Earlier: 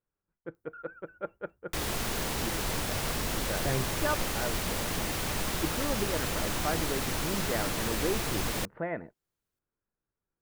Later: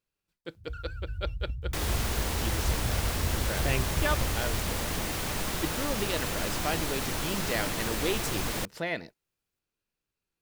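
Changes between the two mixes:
speech: remove inverse Chebyshev low-pass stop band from 5.4 kHz, stop band 60 dB; first sound: remove differentiator

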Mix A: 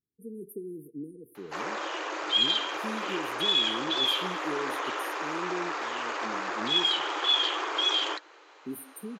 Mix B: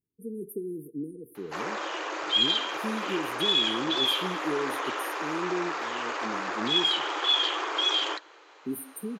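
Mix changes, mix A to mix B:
speech +3.5 dB; reverb: on

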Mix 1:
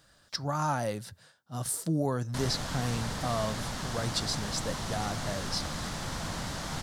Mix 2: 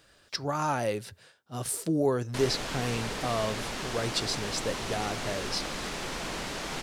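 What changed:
background: add peaking EQ 87 Hz -15 dB 0.68 oct; master: add fifteen-band graphic EQ 160 Hz -4 dB, 400 Hz +9 dB, 2.5 kHz +8 dB

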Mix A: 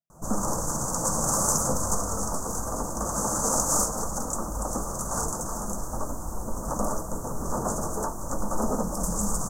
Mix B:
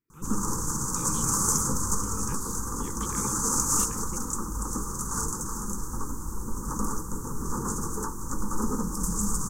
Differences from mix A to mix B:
speech: remove two resonant band-passes 340 Hz, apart 2 oct; master: add Butterworth band-stop 650 Hz, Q 1.2

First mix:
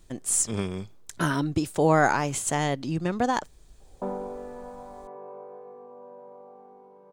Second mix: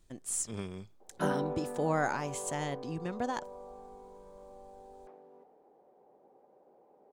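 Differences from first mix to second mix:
speech -10.0 dB; background: entry -2.80 s

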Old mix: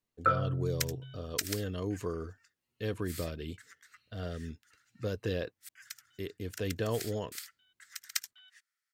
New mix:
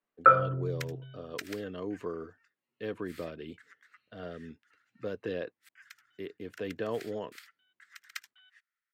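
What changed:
first sound +8.5 dB; master: add three-band isolator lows -18 dB, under 170 Hz, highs -16 dB, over 3.2 kHz

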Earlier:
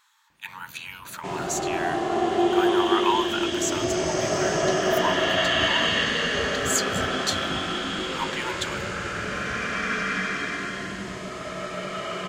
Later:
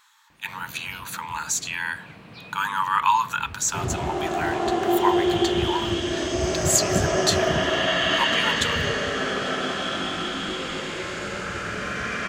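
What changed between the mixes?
speech +5.0 dB; first sound +8.5 dB; second sound: entry +2.50 s

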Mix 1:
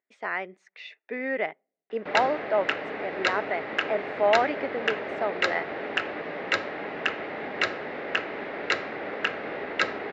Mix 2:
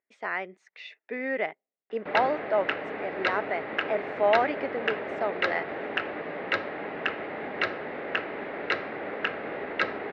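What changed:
speech: send -11.5 dB; background: add distance through air 200 m

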